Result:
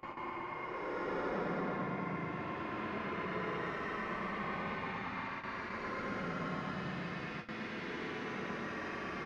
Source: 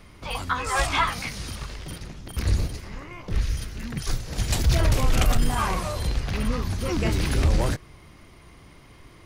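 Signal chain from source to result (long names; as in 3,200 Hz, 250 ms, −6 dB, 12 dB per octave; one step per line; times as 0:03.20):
high-pass filter 240 Hz 24 dB per octave
downward compressor 2 to 1, threshold −47 dBFS, peak gain reduction 15.5 dB
in parallel at −6 dB: bit-depth reduction 6 bits, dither none
on the sum: bouncing-ball delay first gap 140 ms, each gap 0.9×, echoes 5
low-pass that shuts in the quiet parts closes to 1,200 Hz, open at −15.5 dBFS
extreme stretch with random phases 35×, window 0.05 s, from 0:03.25
bucket-brigade delay 115 ms, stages 2,048, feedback 66%, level −4 dB
noise gate with hold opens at −37 dBFS
parametric band 420 Hz −9.5 dB 1.8 octaves
level +8.5 dB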